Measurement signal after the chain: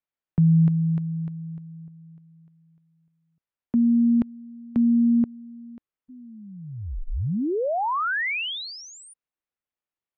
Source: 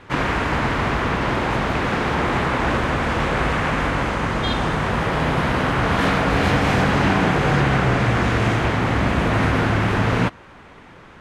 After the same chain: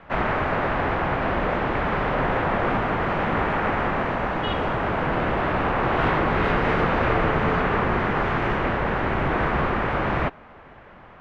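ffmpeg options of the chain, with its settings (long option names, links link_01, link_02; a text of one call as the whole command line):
ffmpeg -i in.wav -filter_complex "[0:a]acrossover=split=270 3400:gain=0.112 1 0.0631[link_01][link_02][link_03];[link_01][link_02][link_03]amix=inputs=3:normalize=0,afreqshift=-320" out.wav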